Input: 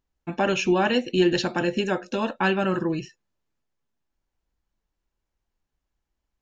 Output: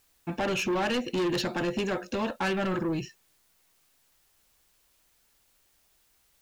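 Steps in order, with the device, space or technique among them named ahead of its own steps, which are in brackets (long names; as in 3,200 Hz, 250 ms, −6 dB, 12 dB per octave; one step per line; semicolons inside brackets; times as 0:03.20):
open-reel tape (soft clipping −24.5 dBFS, distortion −8 dB; parametric band 90 Hz +4.5 dB; white noise bed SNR 35 dB)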